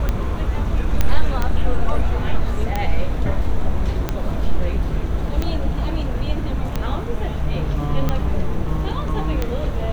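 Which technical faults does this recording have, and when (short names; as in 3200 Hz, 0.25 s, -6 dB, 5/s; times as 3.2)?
tick 45 rpm -8 dBFS
1.01 pop -4 dBFS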